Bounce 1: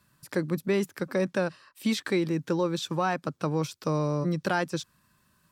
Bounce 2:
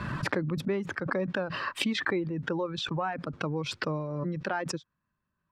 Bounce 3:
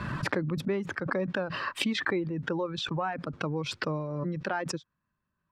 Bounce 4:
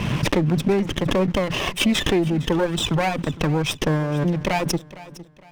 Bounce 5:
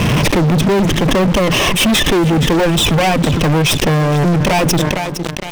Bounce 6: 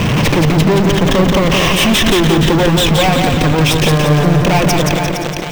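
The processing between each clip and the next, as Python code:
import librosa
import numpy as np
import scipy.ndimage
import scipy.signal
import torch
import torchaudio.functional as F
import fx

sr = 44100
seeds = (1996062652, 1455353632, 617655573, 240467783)

y1 = fx.dereverb_blind(x, sr, rt60_s=1.8)
y1 = scipy.signal.sosfilt(scipy.signal.butter(2, 2100.0, 'lowpass', fs=sr, output='sos'), y1)
y1 = fx.pre_swell(y1, sr, db_per_s=25.0)
y1 = F.gain(torch.from_numpy(y1), -3.5).numpy()
y2 = y1
y3 = fx.lower_of_two(y2, sr, delay_ms=0.33)
y3 = fx.leveller(y3, sr, passes=2)
y3 = fx.echo_feedback(y3, sr, ms=459, feedback_pct=35, wet_db=-18)
y3 = F.gain(torch.from_numpy(y3), 4.0).numpy()
y4 = fx.leveller(y3, sr, passes=5)
y4 = fx.sustainer(y4, sr, db_per_s=27.0)
y4 = F.gain(torch.from_numpy(y4), -1.0).numpy()
y5 = fx.echo_feedback(y4, sr, ms=174, feedback_pct=52, wet_db=-4.0)
y5 = np.repeat(scipy.signal.resample_poly(y5, 1, 2), 2)[:len(y5)]
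y5 = fx.doppler_dist(y5, sr, depth_ms=0.2)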